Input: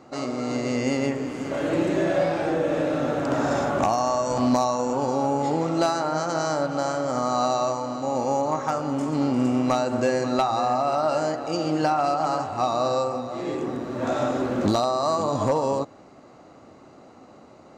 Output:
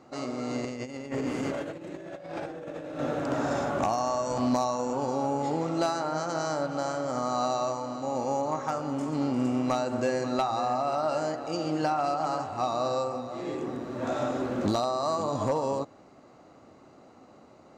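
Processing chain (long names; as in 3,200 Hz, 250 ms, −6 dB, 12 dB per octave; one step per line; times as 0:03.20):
0:00.64–0:02.99: compressor whose output falls as the input rises −29 dBFS, ratio −0.5
level −5 dB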